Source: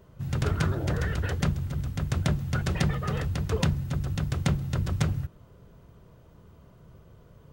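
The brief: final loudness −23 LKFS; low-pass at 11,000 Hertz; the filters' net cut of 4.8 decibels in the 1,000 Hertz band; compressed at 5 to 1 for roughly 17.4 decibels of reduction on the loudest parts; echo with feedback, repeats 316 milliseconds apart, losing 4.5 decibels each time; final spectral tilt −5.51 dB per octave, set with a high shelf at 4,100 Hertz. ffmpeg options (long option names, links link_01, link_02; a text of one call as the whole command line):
ffmpeg -i in.wav -af "lowpass=11000,equalizer=frequency=1000:width_type=o:gain=-7.5,highshelf=frequency=4100:gain=6,acompressor=threshold=-41dB:ratio=5,aecho=1:1:316|632|948|1264|1580|1896|2212|2528|2844:0.596|0.357|0.214|0.129|0.0772|0.0463|0.0278|0.0167|0.01,volume=20dB" out.wav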